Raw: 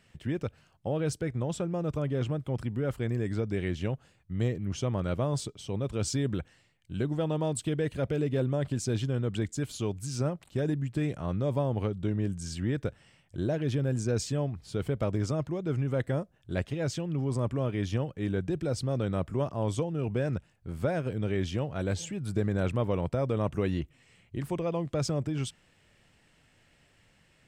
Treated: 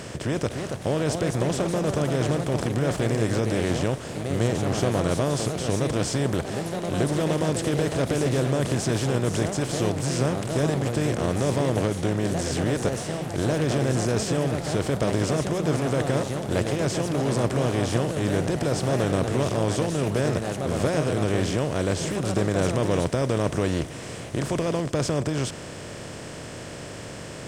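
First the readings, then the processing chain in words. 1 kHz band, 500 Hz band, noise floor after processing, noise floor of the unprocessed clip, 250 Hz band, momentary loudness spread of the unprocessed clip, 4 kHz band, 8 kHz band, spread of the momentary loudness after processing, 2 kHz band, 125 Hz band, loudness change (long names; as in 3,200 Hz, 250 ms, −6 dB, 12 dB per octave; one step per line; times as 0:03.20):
+10.0 dB, +7.5 dB, −37 dBFS, −65 dBFS, +6.5 dB, 5 LU, +10.0 dB, +10.0 dB, 6 LU, +10.0 dB, +5.0 dB, +6.5 dB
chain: compressor on every frequency bin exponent 0.4
delay with pitch and tempo change per echo 327 ms, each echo +2 semitones, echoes 3, each echo −6 dB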